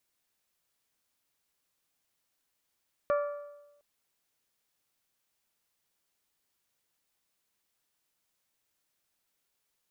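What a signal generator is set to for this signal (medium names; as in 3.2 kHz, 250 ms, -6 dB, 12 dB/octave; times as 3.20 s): metal hit bell, length 0.71 s, lowest mode 581 Hz, decay 1.03 s, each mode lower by 7 dB, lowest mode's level -23 dB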